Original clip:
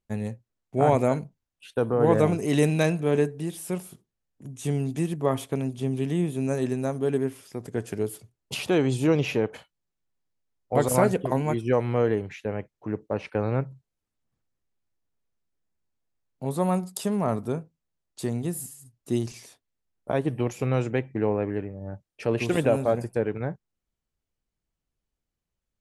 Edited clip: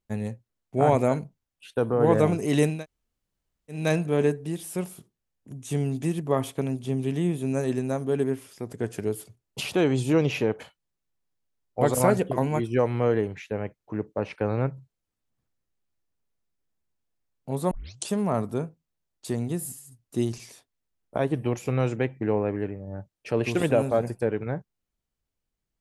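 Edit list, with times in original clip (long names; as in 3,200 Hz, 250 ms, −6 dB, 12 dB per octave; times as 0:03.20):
0:02.74: splice in room tone 1.06 s, crossfade 0.24 s
0:16.65: tape start 0.38 s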